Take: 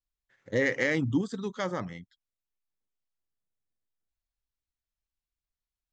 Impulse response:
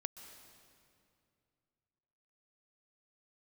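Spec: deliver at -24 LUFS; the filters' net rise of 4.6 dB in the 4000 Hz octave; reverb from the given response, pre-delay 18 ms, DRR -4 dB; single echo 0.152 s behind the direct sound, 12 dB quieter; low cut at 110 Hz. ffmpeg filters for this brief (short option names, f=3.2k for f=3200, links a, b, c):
-filter_complex "[0:a]highpass=110,equalizer=f=4k:t=o:g=6,aecho=1:1:152:0.251,asplit=2[a][b];[1:a]atrim=start_sample=2205,adelay=18[c];[b][c]afir=irnorm=-1:irlink=0,volume=6.5dB[d];[a][d]amix=inputs=2:normalize=0"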